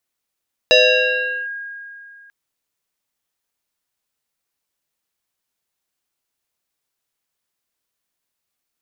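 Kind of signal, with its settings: FM tone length 1.59 s, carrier 1.63 kHz, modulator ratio 0.69, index 2.5, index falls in 0.77 s linear, decay 2.62 s, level -7 dB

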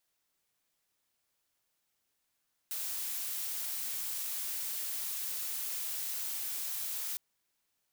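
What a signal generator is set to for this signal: noise blue, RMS -37 dBFS 4.46 s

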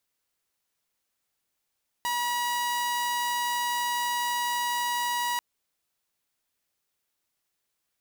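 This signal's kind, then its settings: tone saw 964 Hz -23.5 dBFS 3.34 s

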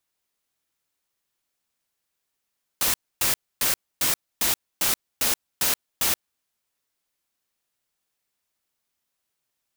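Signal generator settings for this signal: noise bursts white, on 0.13 s, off 0.27 s, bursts 9, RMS -22 dBFS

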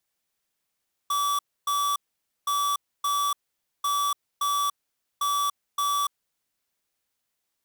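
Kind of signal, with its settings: beep pattern square 1.15 kHz, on 0.29 s, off 0.28 s, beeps 2, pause 0.51 s, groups 4, -25 dBFS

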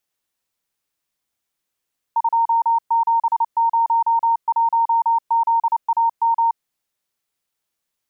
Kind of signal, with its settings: Morse "2701ZAM" 29 wpm 921 Hz -13.5 dBFS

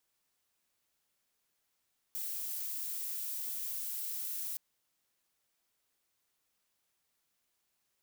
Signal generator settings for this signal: noise violet, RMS -38.5 dBFS 2.42 s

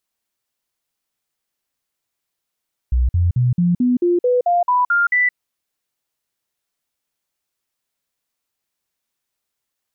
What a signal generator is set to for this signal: stepped sine 61.9 Hz up, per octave 2, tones 11, 0.17 s, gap 0.05 s -12.5 dBFS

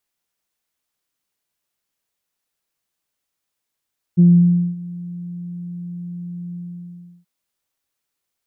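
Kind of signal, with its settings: synth note saw F3 24 dB/octave, low-pass 180 Hz, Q 1.8, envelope 0.5 oct, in 0.24 s, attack 24 ms, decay 0.56 s, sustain -22 dB, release 0.70 s, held 2.38 s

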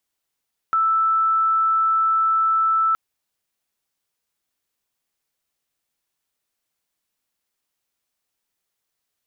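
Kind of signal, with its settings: tone sine 1.32 kHz -15.5 dBFS 2.22 s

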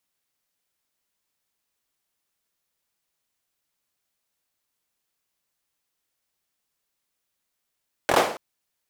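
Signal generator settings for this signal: hand clap length 0.28 s, apart 24 ms, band 600 Hz, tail 0.49 s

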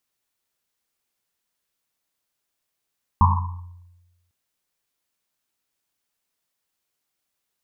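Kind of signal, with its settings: Risset drum, pitch 88 Hz, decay 1.17 s, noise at 1 kHz, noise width 250 Hz, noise 40%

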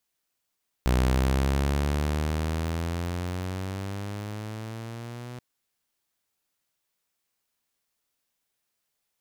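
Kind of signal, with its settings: gliding synth tone saw, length 4.53 s, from 61.9 Hz, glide +12 st, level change -17.5 dB, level -17 dB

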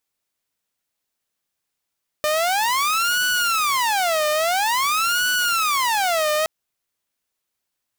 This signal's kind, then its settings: siren wail 605–1480 Hz 0.49 per s saw -15.5 dBFS 4.22 s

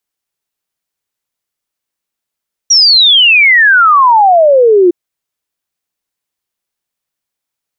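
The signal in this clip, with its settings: log sweep 5.8 kHz -> 340 Hz 2.21 s -3 dBFS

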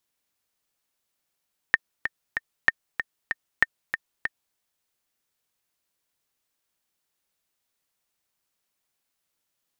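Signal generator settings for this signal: metronome 191 bpm, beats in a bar 3, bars 3, 1.82 kHz, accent 9 dB -3.5 dBFS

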